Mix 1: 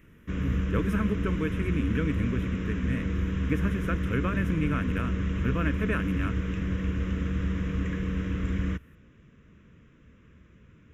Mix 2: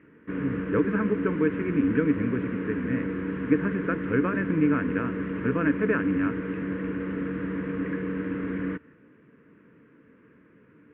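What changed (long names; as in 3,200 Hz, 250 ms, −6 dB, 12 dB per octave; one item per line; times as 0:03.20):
background: add parametric band 69 Hz −11.5 dB 1.4 octaves
master: add loudspeaker in its box 110–2,400 Hz, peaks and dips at 290 Hz +9 dB, 450 Hz +8 dB, 900 Hz +6 dB, 1,600 Hz +5 dB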